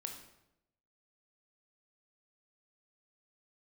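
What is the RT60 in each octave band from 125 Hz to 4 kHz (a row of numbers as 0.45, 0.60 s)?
1.0, 0.95, 0.90, 0.80, 0.70, 0.65 s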